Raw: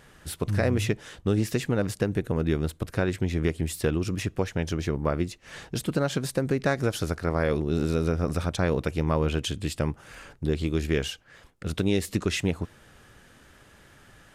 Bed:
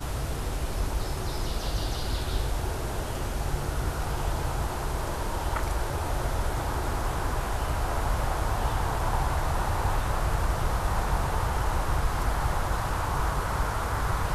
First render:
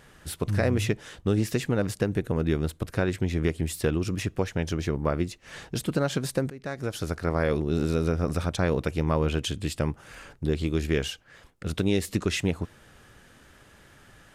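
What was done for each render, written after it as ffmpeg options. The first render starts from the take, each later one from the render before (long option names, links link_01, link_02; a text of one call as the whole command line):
ffmpeg -i in.wav -filter_complex "[0:a]asplit=2[link_01][link_02];[link_01]atrim=end=6.5,asetpts=PTS-STARTPTS,afade=type=out:start_time=6.496:duration=0.004:curve=hsin:silence=0.1[link_03];[link_02]atrim=start=6.5,asetpts=PTS-STARTPTS,afade=type=in:duration=0.73:silence=0.1[link_04];[link_03][link_04]concat=n=2:v=0:a=1" out.wav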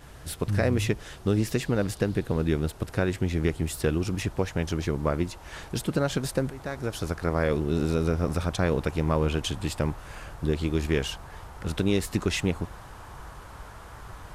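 ffmpeg -i in.wav -i bed.wav -filter_complex "[1:a]volume=-16dB[link_01];[0:a][link_01]amix=inputs=2:normalize=0" out.wav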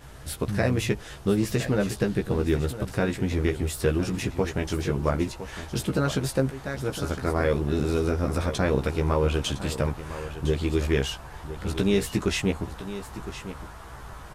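ffmpeg -i in.wav -filter_complex "[0:a]asplit=2[link_01][link_02];[link_02]adelay=15,volume=-4.5dB[link_03];[link_01][link_03]amix=inputs=2:normalize=0,aecho=1:1:1010:0.237" out.wav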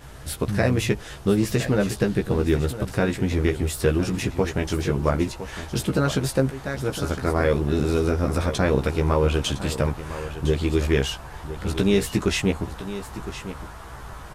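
ffmpeg -i in.wav -af "volume=3dB" out.wav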